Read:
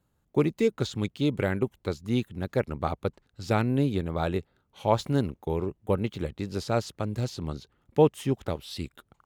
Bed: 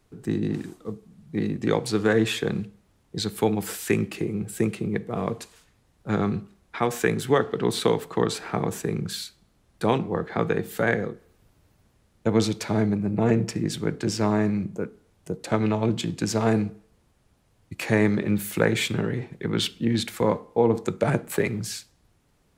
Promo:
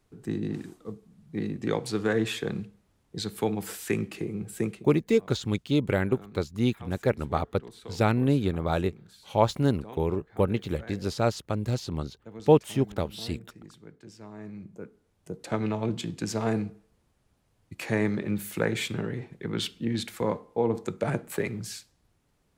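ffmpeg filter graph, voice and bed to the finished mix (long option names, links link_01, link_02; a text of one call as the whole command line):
ffmpeg -i stem1.wav -i stem2.wav -filter_complex "[0:a]adelay=4500,volume=1.5dB[link_01];[1:a]volume=12dB,afade=type=out:start_time=4.65:duration=0.21:silence=0.133352,afade=type=in:start_time=14.33:duration=1.17:silence=0.141254[link_02];[link_01][link_02]amix=inputs=2:normalize=0" out.wav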